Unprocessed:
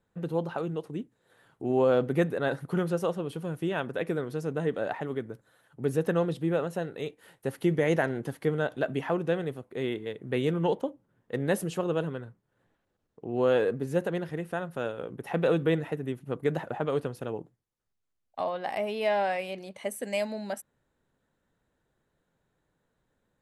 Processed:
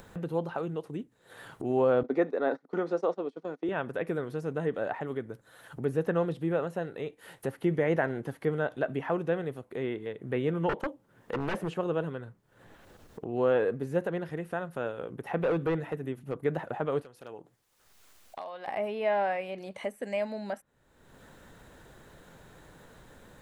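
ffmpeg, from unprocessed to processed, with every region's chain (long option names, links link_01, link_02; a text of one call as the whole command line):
ffmpeg -i in.wav -filter_complex "[0:a]asettb=1/sr,asplit=3[link_01][link_02][link_03];[link_01]atrim=end=2.034[link_04];[link_02]atrim=start=2.03:end=3.69,asetpts=PTS-STARTPTS,afade=type=in:duration=0.004:curve=qsin,afade=type=out:start_time=1.656:duration=0.004:curve=qsin,bandreject=frequency=1600:width=14,agate=range=-20dB:threshold=-35dB:ratio=16:release=100:detection=peak,highpass=frequency=240:width=0.5412,highpass=frequency=240:width=1.3066,equalizer=frequency=260:width_type=q:width=4:gain=5,equalizer=frequency=430:width_type=q:width=4:gain=3,equalizer=frequency=730:width_type=q:width=4:gain=3,equalizer=frequency=2900:width_type=q:width=4:gain=-9,lowpass=frequency=5900:width=0.5412,lowpass=frequency=5900:width=1.3066[link_05];[link_03]atrim=start=3.686[link_06];[link_04][link_05]acrossfade=duration=0.004:curve1=hsin:curve2=qsin[link_07];[link_07][link_06]acrossfade=duration=0.004:curve1=qsin:curve2=hsin,asettb=1/sr,asplit=3[link_08][link_09][link_10];[link_08]atrim=end=10.694[link_11];[link_09]atrim=start=10.69:end=11.74,asetpts=PTS-STARTPTS,afade=type=in:duration=0.004:curve=qsin,afade=type=out:start_time=1.046:duration=0.004:curve=qsin,lowshelf=frequency=210:gain=-6.5,acontrast=32,aeval=exprs='0.0708*(abs(mod(val(0)/0.0708+3,4)-2)-1)':channel_layout=same[link_12];[link_10]atrim=start=11.736[link_13];[link_11][link_12]acrossfade=duration=0.004:curve1=hsin:curve2=qsin[link_14];[link_14][link_13]acrossfade=duration=0.004:curve1=qsin:curve2=hsin,asettb=1/sr,asplit=3[link_15][link_16][link_17];[link_15]atrim=end=15.364[link_18];[link_16]atrim=start=15.36:end=16.35,asetpts=PTS-STARTPTS,afade=type=in:duration=0.004:curve=qsin,afade=type=out:start_time=0.986:duration=0.004:curve=qsin,bandreject=frequency=60:width_type=h:width=6,bandreject=frequency=120:width_type=h:width=6,bandreject=frequency=180:width_type=h:width=6,bandreject=frequency=240:width_type=h:width=6,bandreject=frequency=300:width_type=h:width=6,asoftclip=type=hard:threshold=-22dB[link_19];[link_17]atrim=start=16.346[link_20];[link_18][link_19]acrossfade=duration=0.004:curve1=hsin:curve2=qsin[link_21];[link_21][link_20]acrossfade=duration=0.004:curve1=qsin:curve2=hsin,asettb=1/sr,asplit=3[link_22][link_23][link_24];[link_22]atrim=end=17.024[link_25];[link_23]atrim=start=17.02:end=18.68,asetpts=PTS-STARTPTS,afade=type=in:duration=0.004:curve=qsin,afade=type=out:start_time=1.656:duration=0.004:curve=qsin,acompressor=threshold=-58dB:ratio=1.5:attack=3.2:release=140:knee=1:detection=peak,aeval=exprs='0.0237*(abs(mod(val(0)/0.0237+3,4)-2)-1)':channel_layout=same,lowshelf=frequency=310:gain=-11.5[link_26];[link_24]atrim=start=18.676[link_27];[link_25][link_26]acrossfade=duration=0.004:curve1=hsin:curve2=qsin[link_28];[link_28][link_27]acrossfade=duration=0.004:curve1=qsin:curve2=hsin,acrossover=split=2500[link_29][link_30];[link_30]acompressor=threshold=-57dB:ratio=4:attack=1:release=60[link_31];[link_29][link_31]amix=inputs=2:normalize=0,equalizer=frequency=190:width_type=o:width=2.6:gain=-2.5,acompressor=mode=upward:threshold=-33dB:ratio=2.5" out.wav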